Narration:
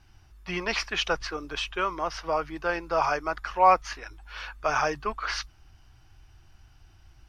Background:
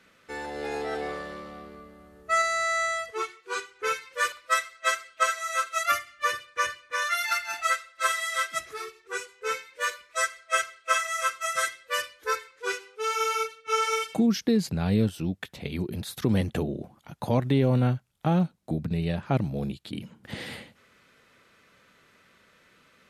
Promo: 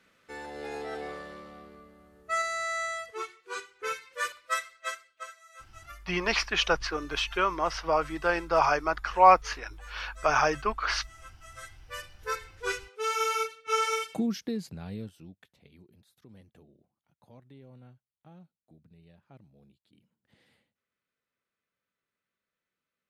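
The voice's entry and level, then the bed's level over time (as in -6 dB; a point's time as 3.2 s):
5.60 s, +1.5 dB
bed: 4.71 s -5.5 dB
5.45 s -23.5 dB
11.36 s -23.5 dB
12.49 s -1.5 dB
13.85 s -1.5 dB
16.12 s -29.5 dB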